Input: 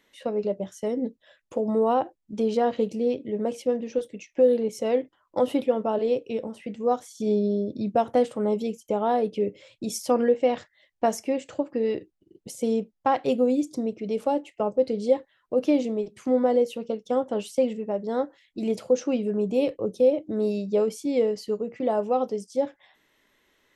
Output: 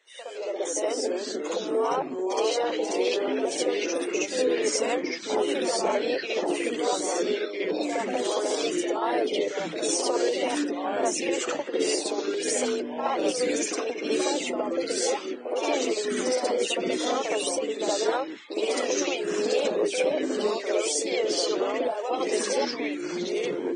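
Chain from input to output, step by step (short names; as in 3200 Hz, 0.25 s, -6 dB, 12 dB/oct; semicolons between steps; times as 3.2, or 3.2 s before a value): steep high-pass 350 Hz 48 dB/oct; harmonic-percussive split harmonic -17 dB; compressor 6:1, threshold -35 dBFS, peak gain reduction 14 dB; limiter -33 dBFS, peak gain reduction 10 dB; AGC gain up to 11 dB; echoes that change speed 0.112 s, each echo -3 st, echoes 3; on a send: reverse echo 65 ms -4.5 dB; on the sum: gain +2.5 dB; Vorbis 16 kbps 22050 Hz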